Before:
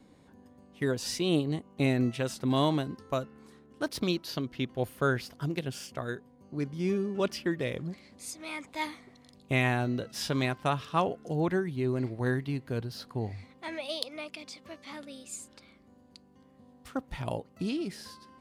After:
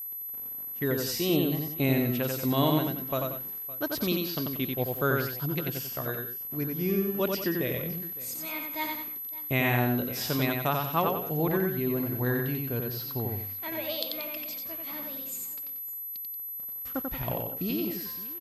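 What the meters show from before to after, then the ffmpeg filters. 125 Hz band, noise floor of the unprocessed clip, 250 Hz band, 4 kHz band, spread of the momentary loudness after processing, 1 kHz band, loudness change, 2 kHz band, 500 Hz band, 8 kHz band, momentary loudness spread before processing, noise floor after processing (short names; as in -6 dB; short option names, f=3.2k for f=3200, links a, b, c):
+1.5 dB, -59 dBFS, +2.0 dB, +2.0 dB, 9 LU, +2.0 dB, +2.5 dB, +2.0 dB, +2.0 dB, +2.0 dB, 14 LU, -38 dBFS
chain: -af "aeval=exprs='val(0)*gte(abs(val(0)),0.00316)':c=same,aecho=1:1:90|183|562:0.668|0.266|0.119,aeval=exprs='val(0)+0.0178*sin(2*PI*12000*n/s)':c=same"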